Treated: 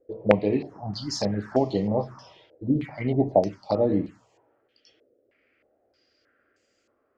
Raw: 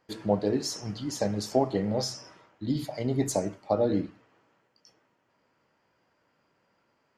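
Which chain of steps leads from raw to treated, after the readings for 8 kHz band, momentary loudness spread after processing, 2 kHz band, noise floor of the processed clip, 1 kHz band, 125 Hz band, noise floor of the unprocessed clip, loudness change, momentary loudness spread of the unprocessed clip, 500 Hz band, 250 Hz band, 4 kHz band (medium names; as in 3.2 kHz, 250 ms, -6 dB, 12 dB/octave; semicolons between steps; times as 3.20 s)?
no reading, 12 LU, +7.5 dB, -71 dBFS, +3.5 dB, +3.5 dB, -72 dBFS, +3.5 dB, 8 LU, +4.0 dB, +3.5 dB, -1.0 dB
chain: touch-sensitive phaser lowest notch 160 Hz, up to 1.5 kHz, full sweep at -24 dBFS; step-sequenced low-pass 3.2 Hz 500–7200 Hz; trim +3.5 dB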